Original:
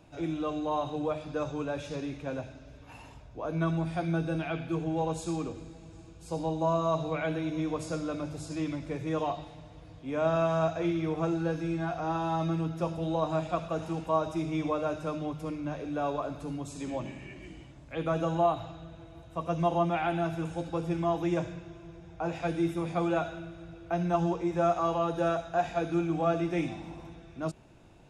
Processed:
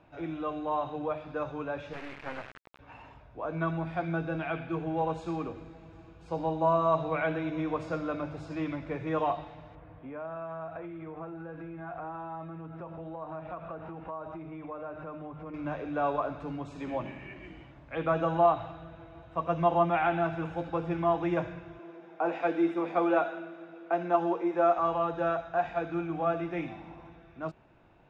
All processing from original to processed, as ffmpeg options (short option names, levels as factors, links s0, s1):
-filter_complex "[0:a]asettb=1/sr,asplit=3[s0][s1][s2];[s0]atrim=end=1.934[s3];[s1]atrim=start=1.93:end=2.79,asetpts=PTS-STARTPTS,afade=t=in:d=0.004:c=qsin,afade=t=out:st=0.856:d=0.004:c=qsin,equalizer=f=2000:t=o:w=0.99:g=11,acrusher=bits=4:dc=4:mix=0:aa=0.000001[s4];[s2]atrim=start=2.786[s5];[s3][s4]acrossfade=d=0.004:c1=hsin:c2=qsin[s6];[s6][s5]acrossfade=d=0.004:c1=qsin:c2=hsin,asettb=1/sr,asplit=3[s7][s8][s9];[s7]atrim=end=9.754[s10];[s8]atrim=start=9.75:end=15.54,asetpts=PTS-STARTPTS,afade=t=in:d=0.004:c=qsin,afade=t=out:st=5.786:d=0.004:c=qsin,lowpass=2100,acompressor=threshold=0.0126:ratio=8:attack=3.2:release=140:knee=1:detection=peak[s11];[s9]atrim=start=15.536[s12];[s10][s11]acrossfade=d=0.004:c1=hsin:c2=qsin[s13];[s13][s12]acrossfade=d=0.004:c1=qsin:c2=hsin,asettb=1/sr,asplit=3[s14][s15][s16];[s14]atrim=end=21.794[s17];[s15]atrim=start=21.79:end=24.78,asetpts=PTS-STARTPTS,afade=t=in:d=0.004:c=qsin,afade=t=out:st=2.986:d=0.004:c=qsin,highpass=f=230:w=0.5412,highpass=f=230:w=1.3066,equalizer=f=360:t=o:w=1.9:g=4[s18];[s16]atrim=start=24.776[s19];[s17][s18]acrossfade=d=0.004:c1=hsin:c2=qsin[s20];[s20][s19]acrossfade=d=0.004:c1=qsin:c2=hsin,lowpass=1800,tiltshelf=f=710:g=-5.5,dynaudnorm=f=440:g=21:m=1.41"